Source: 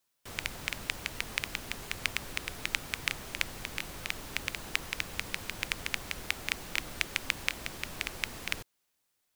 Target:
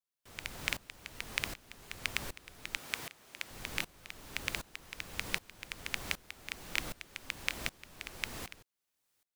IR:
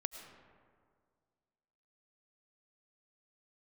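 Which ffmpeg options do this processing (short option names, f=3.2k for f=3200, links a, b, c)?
-filter_complex "[0:a]asettb=1/sr,asplit=3[a][b][c];[a]atrim=end=2.774[d];[b]atrim=start=2.77:end=3.51,asetpts=PTS-STARTPTS,afade=t=in:d=0.004:c=qsin,afade=t=out:st=0.736:d=0.004:c=qsin,highpass=f=290:p=1[e];[c]atrim=start=3.506[f];[d][e]acrossfade=d=0.004:c1=hsin:c2=qsin[g];[g][f]acrossfade=d=0.004:c1=qsin:c2=hsin,aeval=exprs='val(0)*pow(10,-22*if(lt(mod(-1.3*n/s,1),2*abs(-1.3)/1000),1-mod(-1.3*n/s,1)/(2*abs(-1.3)/1000),(mod(-1.3*n/s,1)-2*abs(-1.3)/1000)/(1-2*abs(-1.3)/1000))/20)':c=same,volume=3dB"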